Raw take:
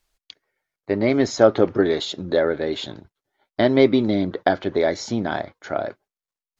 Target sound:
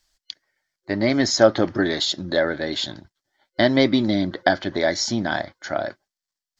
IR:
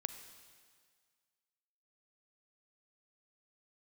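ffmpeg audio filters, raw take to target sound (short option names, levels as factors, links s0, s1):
-af "superequalizer=7b=0.398:11b=1.78:13b=1.78:14b=3.16:15b=2.24"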